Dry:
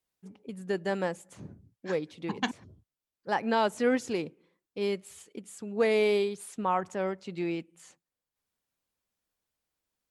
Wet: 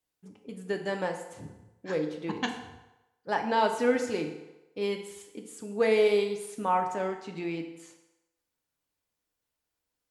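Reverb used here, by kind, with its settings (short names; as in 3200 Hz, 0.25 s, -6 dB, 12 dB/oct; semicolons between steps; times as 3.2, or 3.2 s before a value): FDN reverb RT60 1 s, low-frequency decay 0.7×, high-frequency decay 0.8×, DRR 3.5 dB; gain -1 dB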